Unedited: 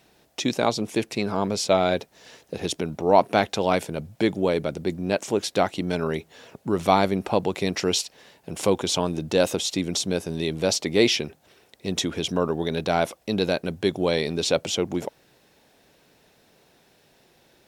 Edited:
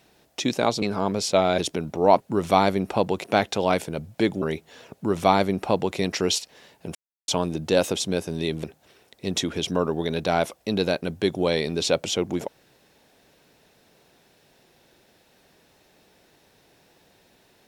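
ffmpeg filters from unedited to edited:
-filter_complex "[0:a]asplit=10[a][b][c][d][e][f][g][h][i][j];[a]atrim=end=0.822[k];[b]atrim=start=1.178:end=1.942[l];[c]atrim=start=2.628:end=3.252[m];[d]atrim=start=6.558:end=7.602[n];[e]atrim=start=3.248:end=4.432[o];[f]atrim=start=6.048:end=8.58,asetpts=PTS-STARTPTS,afade=t=out:st=2.528:d=0.004:c=hsin[p];[g]atrim=start=8.58:end=8.91,asetpts=PTS-STARTPTS,volume=0[q];[h]atrim=start=8.91:end=9.632,asetpts=PTS-STARTPTS,afade=t=in:d=0.004:c=hsin[r];[i]atrim=start=9.988:end=10.632[s];[j]atrim=start=11.248[t];[k][l]acrossfade=d=0.004:c1=hsin:c2=hsin[u];[u][m]acrossfade=d=0.004:c1=hsin:c2=hsin[v];[v][n]acrossfade=d=0.004:c1=hsin:c2=hsin[w];[w][o]acrossfade=d=0.004:c1=hsin:c2=hsin[x];[p][q][r]concat=n=3:v=0:a=1[y];[x][y]acrossfade=d=0.004:c1=hsin:c2=hsin[z];[z][s]acrossfade=d=0.004:c1=hsin:c2=hsin[aa];[aa][t]acrossfade=d=0.004:c1=hsin:c2=hsin"

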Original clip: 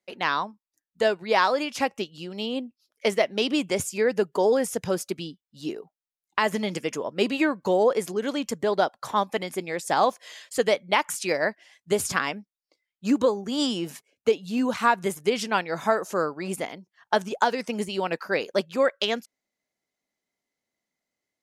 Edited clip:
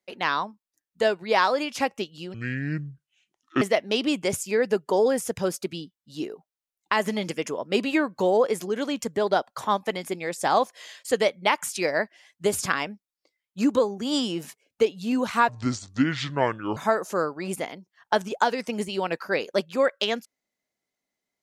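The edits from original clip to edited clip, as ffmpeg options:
-filter_complex "[0:a]asplit=5[a][b][c][d][e];[a]atrim=end=2.344[f];[b]atrim=start=2.34:end=3.08,asetpts=PTS-STARTPTS,asetrate=25578,aresample=44100[g];[c]atrim=start=3.076:end=14.954[h];[d]atrim=start=14.95:end=15.77,asetpts=PTS-STARTPTS,asetrate=28224,aresample=44100,atrim=end_sample=56503,asetpts=PTS-STARTPTS[i];[e]atrim=start=15.766[j];[f][g]acrossfade=d=0.004:c1=hsin:c2=hsin[k];[k][h]acrossfade=d=0.004:c1=hsin:c2=hsin[l];[l][i]acrossfade=d=0.004:c1=hsin:c2=hsin[m];[m][j]acrossfade=d=0.004:c1=hsin:c2=hsin"

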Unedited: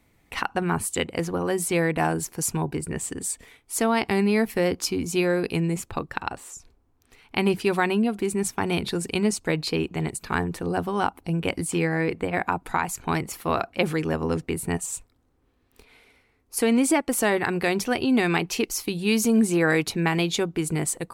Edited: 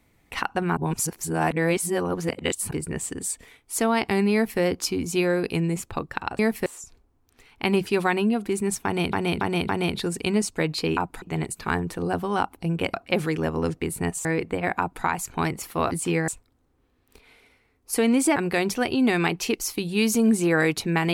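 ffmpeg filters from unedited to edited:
-filter_complex "[0:a]asplit=15[a][b][c][d][e][f][g][h][i][j][k][l][m][n][o];[a]atrim=end=0.772[p];[b]atrim=start=0.768:end=2.712,asetpts=PTS-STARTPTS,areverse[q];[c]atrim=start=2.708:end=6.392[r];[d]atrim=start=4.328:end=4.602[s];[e]atrim=start=6.388:end=8.862[t];[f]atrim=start=8.578:end=8.862[u];[g]atrim=start=8.578:end=8.862[v];[h]atrim=start=8.578:end=9.862[w];[i]atrim=start=12.488:end=12.742[x];[j]atrim=start=9.858:end=11.582[y];[k]atrim=start=13.608:end=14.922[z];[l]atrim=start=11.948:end=13.612[aa];[m]atrim=start=11.578:end=11.952[ab];[n]atrim=start=14.918:end=17.002[ac];[o]atrim=start=17.458[ad];[p][q]acrossfade=d=0.004:c1=hsin:c2=hsin[ae];[ae][r]acrossfade=d=0.004:c1=hsin:c2=hsin[af];[af][s]acrossfade=d=0.004:c1=hsin:c2=hsin[ag];[ag][t]acrossfade=d=0.004:c1=hsin:c2=hsin[ah];[ah][u]acrossfade=d=0.004:c1=hsin:c2=hsin[ai];[ai][v]acrossfade=d=0.004:c1=hsin:c2=hsin[aj];[aj][w]acrossfade=d=0.004:c1=hsin:c2=hsin[ak];[ak][x]acrossfade=d=0.004:c1=hsin:c2=hsin[al];[al][y]acrossfade=d=0.004:c1=hsin:c2=hsin[am];[am][z]acrossfade=d=0.004:c1=hsin:c2=hsin[an];[an][aa]acrossfade=d=0.004:c1=hsin:c2=hsin[ao];[ao][ab]acrossfade=d=0.004:c1=hsin:c2=hsin[ap];[ap][ac]acrossfade=d=0.004:c1=hsin:c2=hsin[aq];[aq][ad]acrossfade=d=0.004:c1=hsin:c2=hsin"

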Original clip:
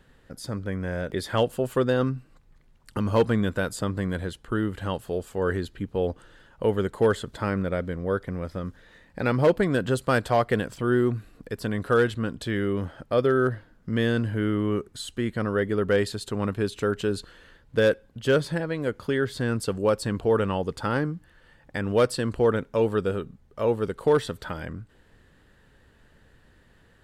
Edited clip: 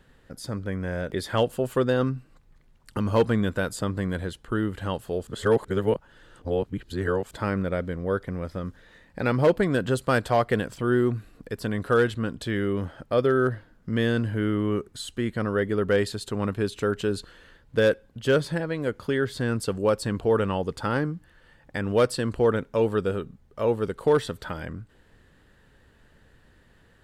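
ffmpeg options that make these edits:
-filter_complex "[0:a]asplit=3[a][b][c];[a]atrim=end=5.272[d];[b]atrim=start=5.268:end=7.312,asetpts=PTS-STARTPTS,areverse[e];[c]atrim=start=7.308[f];[d][e]acrossfade=d=0.004:c1=hsin:c2=hsin[g];[g][f]acrossfade=d=0.004:c1=hsin:c2=hsin"

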